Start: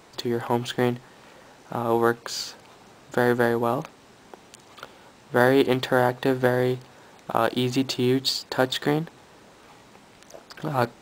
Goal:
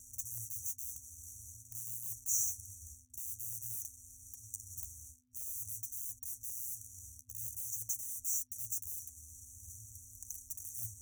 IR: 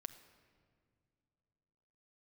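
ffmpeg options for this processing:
-filter_complex "[0:a]areverse,acompressor=threshold=-28dB:ratio=20,areverse,highshelf=f=4.2k:g=-12,acrossover=split=280|3000[a][b][c];[a]acompressor=threshold=-48dB:ratio=2.5[d];[d][b][c]amix=inputs=3:normalize=0,acrusher=bits=7:mix=0:aa=0.5,afftfilt=real='re*(1-between(b*sr/4096,110,5700))':imag='im*(1-between(b*sr/4096,110,5700))':win_size=4096:overlap=0.75,flanger=delay=5.6:depth=8.1:regen=30:speed=0.48:shape=sinusoidal,aeval=exprs='val(0)+0.000126*(sin(2*PI*50*n/s)+sin(2*PI*2*50*n/s)/2+sin(2*PI*3*50*n/s)/3+sin(2*PI*4*50*n/s)/4+sin(2*PI*5*50*n/s)/5)':c=same,highpass=59,highshelf=f=10k:g=10,bandreject=f=50:t=h:w=6,bandreject=f=100:t=h:w=6,bandreject=f=150:t=h:w=6,bandreject=f=200:t=h:w=6,volume=16dB"

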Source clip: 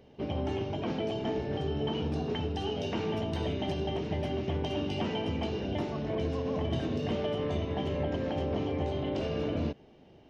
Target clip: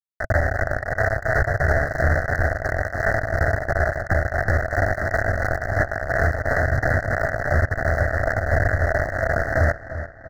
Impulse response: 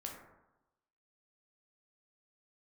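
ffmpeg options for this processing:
-filter_complex "[0:a]asettb=1/sr,asplit=3[a][b][c];[a]atrim=end=0.824[d];[b]atrim=start=0.82:end=1.66,asetpts=PTS-STARTPTS,afade=t=in:d=0.004:c=qsin,afade=t=out:st=0.836:d=0.004:c=qsin,aecho=1:1:1.8:0.91,atrim=end_sample=37044[e];[c]atrim=start=1.656[f];[d][e]acrossfade=d=0.004:c1=hsin:c2=qsin[g];[g][f]acrossfade=d=0.004:c1=qsin:c2=hsin,acrossover=split=440[h][i];[i]acompressor=threshold=-49dB:ratio=5[j];[h][j]amix=inputs=2:normalize=0,asettb=1/sr,asplit=3[k][l][m];[k]atrim=end=4.034[n];[l]atrim=start=4.03:end=4.72,asetpts=PTS-STARTPTS,afade=t=in:d=0.004:c=qsin,afade=t=out:st=0.686:d=0.004:c=qsin,highpass=62[o];[m]atrim=start=4.716[p];[n][o]acrossfade=d=0.004:c1=hsin:c2=qsin[q];[q][p]acrossfade=d=0.004:c1=qsin:c2=hsin,acrusher=bits=4:mix=0:aa=0.000001,aeval=exprs='0.0668*(cos(1*acos(clip(val(0)/0.0668,-1,1)))-cos(1*PI/2))+0.00668*(cos(2*acos(clip(val(0)/0.0668,-1,1)))-cos(2*PI/2))':c=same,asettb=1/sr,asplit=3[r][s][t];[r]atrim=end=8.374[u];[s]atrim=start=8.37:end=8.78,asetpts=PTS-STARTPTS,afade=t=in:d=0.004:c=qsin,afade=t=out:st=0.406:d=0.004:c=qsin,asubboost=boost=9.5:cutoff=200[v];[t]atrim=start=8.776[w];[u][v]acrossfade=d=0.004:c1=hsin:c2=qsin[x];[x][w]acrossfade=d=0.004:c1=qsin:c2=hsin,acontrast=81,firequalizer=gain_entry='entry(110,0);entry(170,-16);entry(430,-14);entry(650,5);entry(970,-20);entry(1500,5);entry(2400,5);entry(3600,-24);entry(5800,-16);entry(8400,-24)':delay=0.05:min_phase=1,tremolo=f=2.9:d=0.57,asuperstop=centerf=2800:order=20:qfactor=1.4,asplit=2[y][z];[z]adelay=342,lowpass=f=4.4k:p=1,volume=-14dB,asplit=2[aa][ab];[ab]adelay=342,lowpass=f=4.4k:p=1,volume=0.5,asplit=2[ac][ad];[ad]adelay=342,lowpass=f=4.4k:p=1,volume=0.5,asplit=2[ae][af];[af]adelay=342,lowpass=f=4.4k:p=1,volume=0.5,asplit=2[ag][ah];[ah]adelay=342,lowpass=f=4.4k:p=1,volume=0.5[ai];[aa][ac][ae][ag][ai]amix=inputs=5:normalize=0[aj];[y][aj]amix=inputs=2:normalize=0,alimiter=level_in=19.5dB:limit=-1dB:release=50:level=0:latency=1,volume=-7.5dB"

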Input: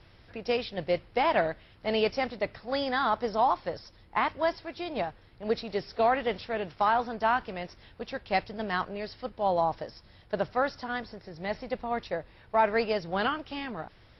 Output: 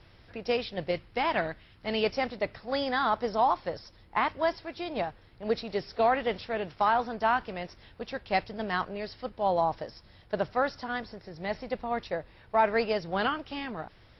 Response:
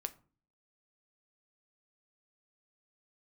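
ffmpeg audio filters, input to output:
-filter_complex "[0:a]asettb=1/sr,asplit=3[a][b][c];[a]atrim=end=0.914[d];[b]atrim=start=0.91:end=2.04,asetpts=PTS-STARTPTS,afade=t=in:d=0.004:c=qsin,afade=t=out:st=1.126:d=0.004:c=qsin,equalizer=f=580:t=o:w=1.1:g=-5.5[e];[c]atrim=start=2.036[f];[d][e]acrossfade=d=0.004:c1=hsin:c2=qsin[g];[g][f]acrossfade=d=0.004:c1=qsin:c2=hsin"

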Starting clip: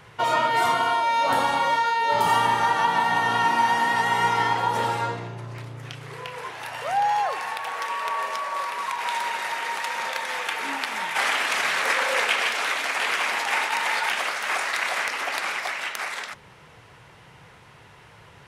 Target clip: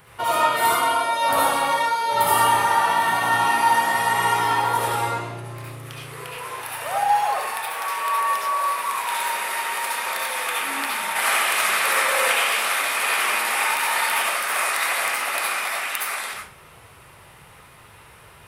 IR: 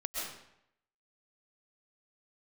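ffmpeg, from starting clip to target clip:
-filter_complex "[0:a]aexciter=amount=6.3:drive=3:freq=8.8k[a];[1:a]atrim=start_sample=2205,asetrate=83790,aresample=44100[b];[a][b]afir=irnorm=-1:irlink=0,volume=5dB"

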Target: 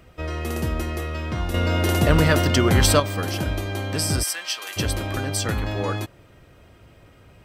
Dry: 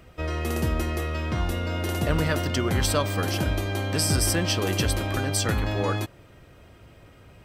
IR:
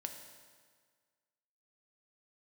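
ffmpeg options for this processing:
-filter_complex "[0:a]asettb=1/sr,asplit=3[a][b][c];[a]atrim=end=1.544[d];[b]atrim=start=1.54:end=3,asetpts=PTS-STARTPTS,afade=t=in:d=0.004:c=qsin,afade=t=out:st=1.456:d=0.004:c=qsin,acontrast=84[e];[c]atrim=start=2.996[f];[d][e]acrossfade=d=0.004:c1=hsin:c2=qsin[g];[g][f]acrossfade=d=0.004:c1=qsin:c2=hsin,asplit=3[h][i][j];[h]afade=t=out:st=4.22:d=0.02[k];[i]highpass=1.3k,afade=t=in:st=4.22:d=0.02,afade=t=out:st=4.76:d=0.02[l];[j]afade=t=in:st=4.76:d=0.02[m];[k][l][m]amix=inputs=3:normalize=0"

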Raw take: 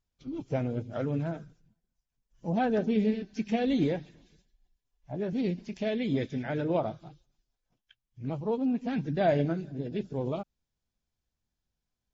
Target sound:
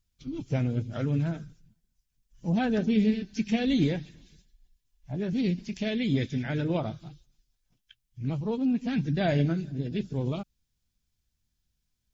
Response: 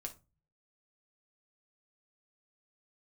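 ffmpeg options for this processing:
-af "equalizer=f=660:w=0.49:g=-12,volume=8dB"

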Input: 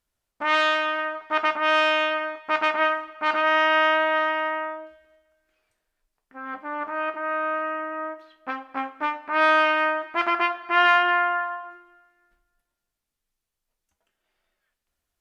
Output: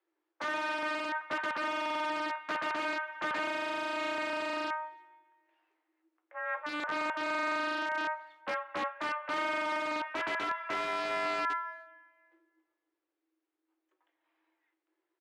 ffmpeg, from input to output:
-filter_complex "[0:a]bandreject=f=60:t=h:w=6,bandreject=f=120:t=h:w=6,bandreject=f=180:t=h:w=6,bandreject=f=240:t=h:w=6,bandreject=f=300:t=h:w=6,bandreject=f=360:t=h:w=6,bandreject=f=420:t=h:w=6,acompressor=threshold=-21dB:ratio=16,afreqshift=300,aeval=exprs='(mod(14.1*val(0)+1,2)-1)/14.1':c=same,highpass=180,lowpass=2.1k,asplit=2[a][b];[b]adelay=270,highpass=300,lowpass=3.4k,asoftclip=type=hard:threshold=-32.5dB,volume=-30dB[c];[a][c]amix=inputs=2:normalize=0"

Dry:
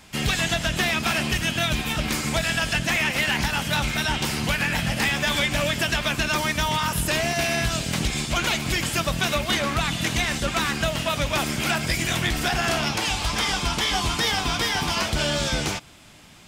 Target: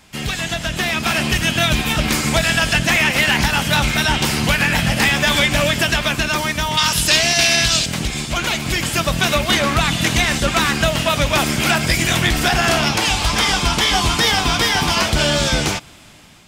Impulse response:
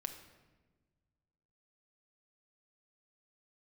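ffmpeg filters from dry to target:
-filter_complex "[0:a]asettb=1/sr,asplit=3[a][b][c];[a]atrim=end=6.774[d];[b]atrim=start=6.77:end=7.86,asetpts=PTS-STARTPTS,afade=t=in:d=0.004:c=qsin,afade=t=out:st=1.086:d=0.004:c=qsin,equalizer=f=4.7k:w=0.59:g=13[e];[c]atrim=start=7.856[f];[d][e]acrossfade=d=0.004:c1=hsin:c2=qsin[g];[g][f]acrossfade=d=0.004:c1=qsin:c2=hsin,dynaudnorm=f=420:g=5:m=7.5dB"

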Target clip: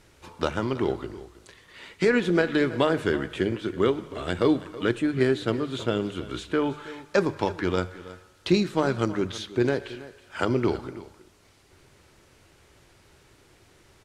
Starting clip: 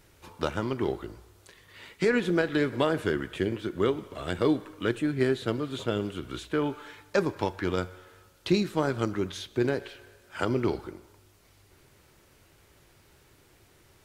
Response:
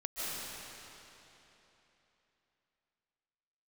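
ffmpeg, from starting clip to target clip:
-filter_complex "[0:a]lowpass=9.5k,bandreject=f=50:t=h:w=6,bandreject=f=100:t=h:w=6,bandreject=f=150:t=h:w=6,asplit=2[a][b];[b]aecho=0:1:324:0.141[c];[a][c]amix=inputs=2:normalize=0,volume=3dB"

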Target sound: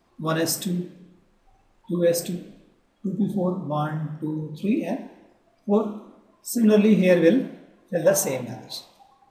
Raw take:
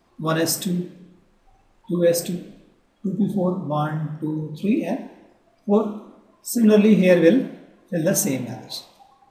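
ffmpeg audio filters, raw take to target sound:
-filter_complex "[0:a]asettb=1/sr,asplit=3[a][b][c];[a]atrim=end=7.954[d];[b]atrim=start=7.95:end=8.42,asetpts=PTS-STARTPTS,afade=t=in:d=0.004:c=qsin,afade=t=out:st=0.466:d=0.004:c=qsin,equalizer=f=250:t=o:w=1:g=-11,equalizer=f=500:t=o:w=1:g=7,equalizer=f=1k:t=o:w=1:g=9[e];[c]atrim=start=8.416[f];[d][e]acrossfade=d=0.004:c1=hsin:c2=qsin[g];[g][f]acrossfade=d=0.004:c1=qsin:c2=hsin,volume=-2.5dB"

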